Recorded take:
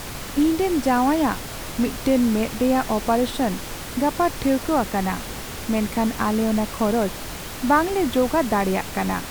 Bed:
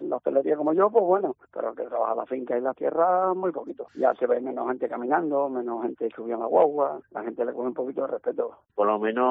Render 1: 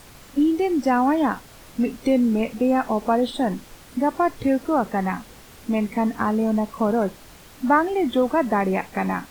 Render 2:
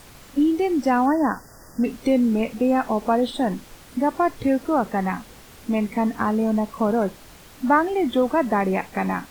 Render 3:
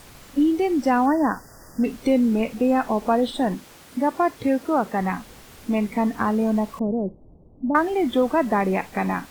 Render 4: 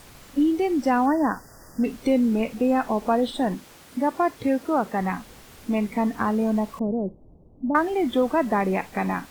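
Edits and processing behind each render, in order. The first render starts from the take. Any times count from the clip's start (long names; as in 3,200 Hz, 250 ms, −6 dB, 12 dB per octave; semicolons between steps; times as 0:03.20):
noise reduction from a noise print 13 dB
0:01.06–0:01.84: linear-phase brick-wall band-stop 2,000–4,600 Hz
0:03.55–0:05.01: high-pass filter 140 Hz 6 dB per octave; 0:06.79–0:07.75: Gaussian smoothing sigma 15 samples
level −1.5 dB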